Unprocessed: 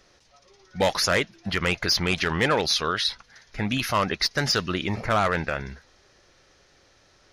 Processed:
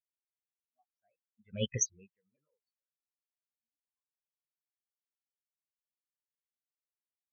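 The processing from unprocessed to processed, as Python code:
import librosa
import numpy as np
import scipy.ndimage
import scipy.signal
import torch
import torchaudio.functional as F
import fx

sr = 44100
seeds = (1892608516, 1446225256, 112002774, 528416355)

y = fx.pitch_ramps(x, sr, semitones=5.0, every_ms=486)
y = fx.doppler_pass(y, sr, speed_mps=18, closest_m=1.1, pass_at_s=1.7)
y = fx.spectral_expand(y, sr, expansion=4.0)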